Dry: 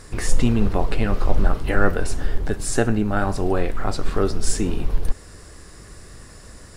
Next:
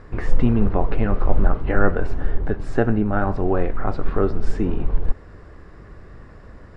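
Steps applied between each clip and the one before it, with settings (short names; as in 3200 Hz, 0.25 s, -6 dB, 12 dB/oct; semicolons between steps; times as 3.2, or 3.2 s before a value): LPF 1700 Hz 12 dB/oct; gain +1 dB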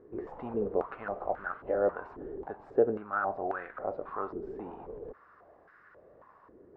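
stepped band-pass 3.7 Hz 380–1500 Hz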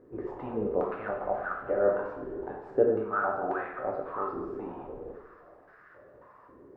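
two-slope reverb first 0.83 s, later 2.5 s, from -17 dB, DRR -0.5 dB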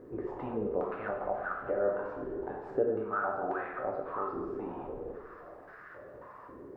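compressor 1.5:1, threshold -52 dBFS, peak gain reduction 12.5 dB; gain +6 dB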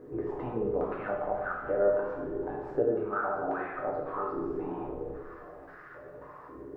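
shoebox room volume 37 m³, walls mixed, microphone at 0.43 m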